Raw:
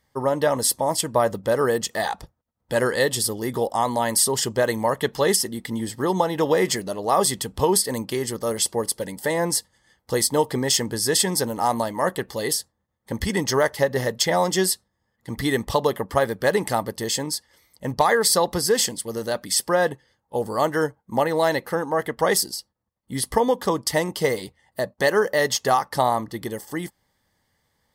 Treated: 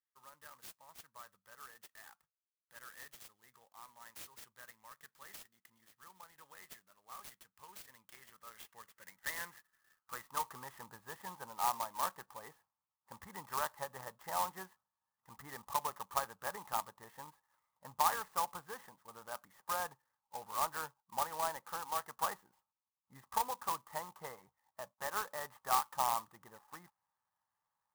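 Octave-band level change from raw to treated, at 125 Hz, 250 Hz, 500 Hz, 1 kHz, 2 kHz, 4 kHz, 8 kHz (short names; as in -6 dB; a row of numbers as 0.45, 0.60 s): -30.0, -33.0, -28.0, -13.5, -19.5, -23.0, -23.0 dB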